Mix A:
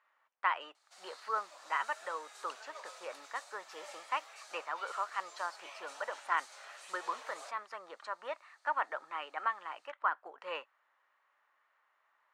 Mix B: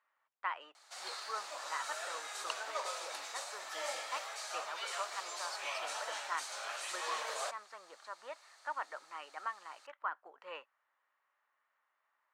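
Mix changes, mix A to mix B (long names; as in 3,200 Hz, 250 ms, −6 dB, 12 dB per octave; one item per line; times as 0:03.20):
speech −6.5 dB
background +10.5 dB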